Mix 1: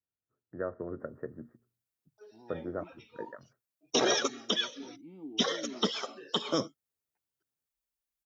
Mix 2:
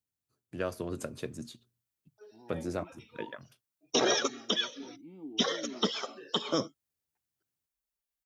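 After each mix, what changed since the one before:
first voice: remove rippled Chebyshev low-pass 1900 Hz, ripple 6 dB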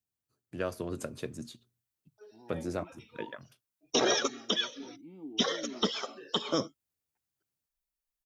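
background: remove HPF 48 Hz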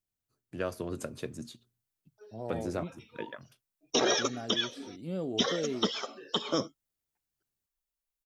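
second voice: remove vowel filter u

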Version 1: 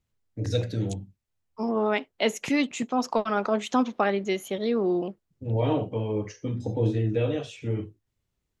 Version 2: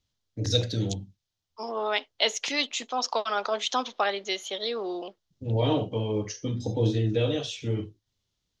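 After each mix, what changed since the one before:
second voice: add BPF 560–6200 Hz; master: add band shelf 4500 Hz +10.5 dB 1.3 oct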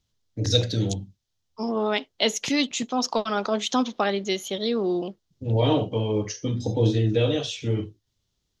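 first voice +3.5 dB; second voice: remove BPF 560–6200 Hz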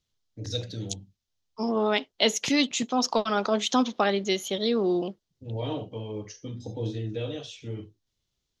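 first voice -10.5 dB

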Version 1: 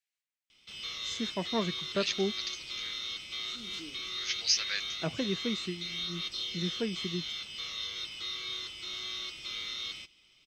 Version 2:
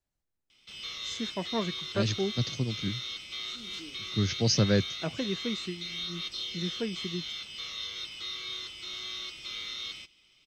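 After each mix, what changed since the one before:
second voice: remove resonant high-pass 2300 Hz, resonance Q 2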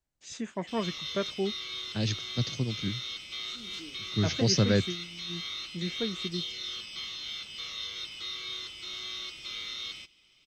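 first voice: entry -0.80 s

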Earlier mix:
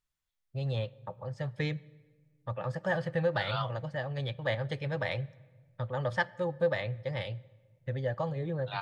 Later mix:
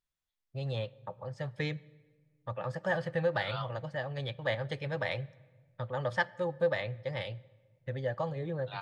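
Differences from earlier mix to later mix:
second voice -4.5 dB; master: add low shelf 180 Hz -5 dB

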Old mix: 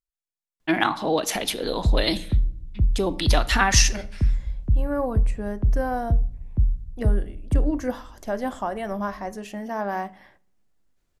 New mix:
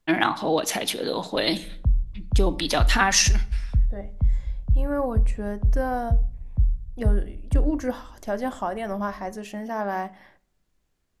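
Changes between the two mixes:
first voice: entry -0.60 s; background: add fixed phaser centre 830 Hz, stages 4

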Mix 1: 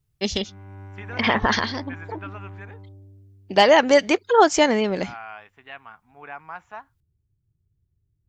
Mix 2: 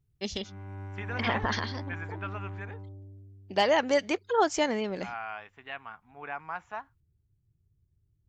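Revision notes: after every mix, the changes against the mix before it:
first voice -9.5 dB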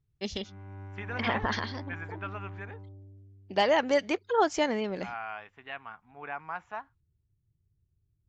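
background -3.0 dB; master: add air absorption 56 m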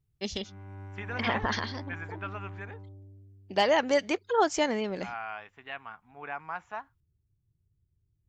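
master: remove air absorption 56 m

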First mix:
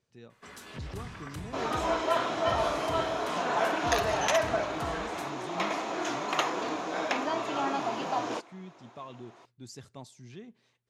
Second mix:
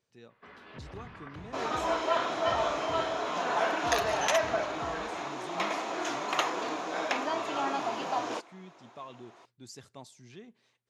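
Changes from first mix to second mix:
first sound: add air absorption 340 m; master: add low shelf 230 Hz -7.5 dB

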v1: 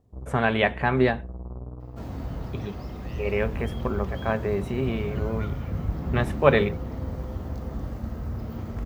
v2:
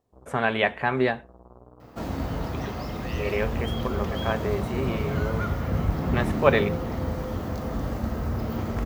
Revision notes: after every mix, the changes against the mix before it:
first sound: add low shelf 320 Hz -11 dB; second sound +9.5 dB; master: add low shelf 230 Hz -7.5 dB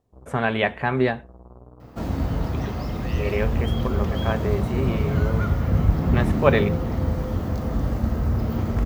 master: add low shelf 230 Hz +7.5 dB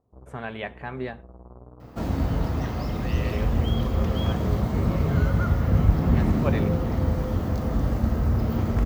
speech -11.5 dB

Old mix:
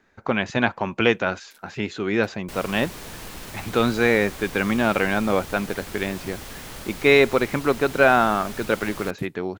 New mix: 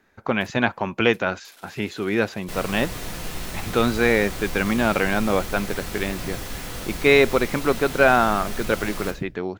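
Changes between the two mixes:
first sound: entry -1.10 s; reverb: on, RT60 0.50 s

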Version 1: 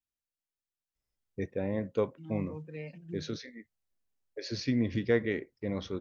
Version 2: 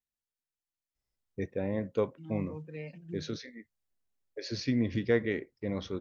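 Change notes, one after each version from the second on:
none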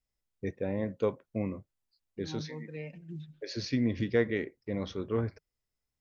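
first voice: entry -0.95 s; reverb: on, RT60 0.95 s

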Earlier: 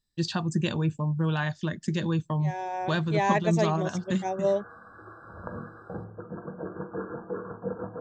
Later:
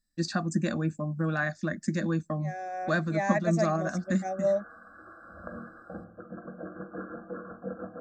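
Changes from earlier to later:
first voice +3.5 dB; master: add fixed phaser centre 620 Hz, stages 8

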